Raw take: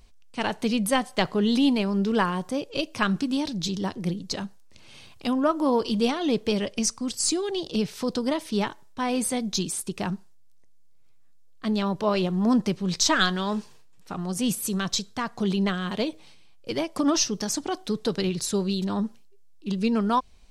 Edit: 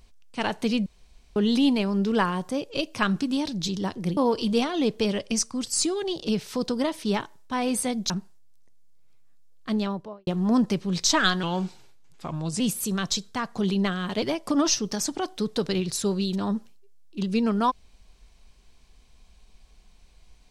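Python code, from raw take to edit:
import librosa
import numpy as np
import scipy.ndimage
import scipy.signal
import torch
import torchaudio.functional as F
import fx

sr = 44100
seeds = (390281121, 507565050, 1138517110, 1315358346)

y = fx.studio_fade_out(x, sr, start_s=11.66, length_s=0.57)
y = fx.edit(y, sr, fx.room_tone_fill(start_s=0.86, length_s=0.5),
    fx.cut(start_s=4.17, length_s=1.47),
    fx.cut(start_s=9.57, length_s=0.49),
    fx.speed_span(start_s=13.39, length_s=1.03, speed=0.88),
    fx.cut(start_s=16.04, length_s=0.67), tone=tone)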